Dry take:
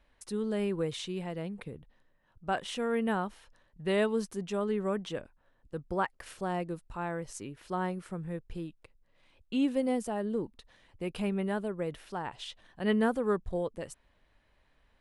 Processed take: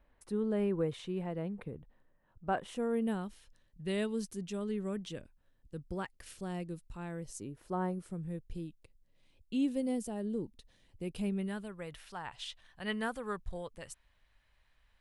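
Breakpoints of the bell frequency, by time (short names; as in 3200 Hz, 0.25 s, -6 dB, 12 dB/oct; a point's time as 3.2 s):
bell -12.5 dB 2.6 oct
2.57 s 5900 Hz
3.22 s 930 Hz
7.11 s 930 Hz
7.8 s 4100 Hz
8.14 s 1200 Hz
11.3 s 1200 Hz
11.8 s 330 Hz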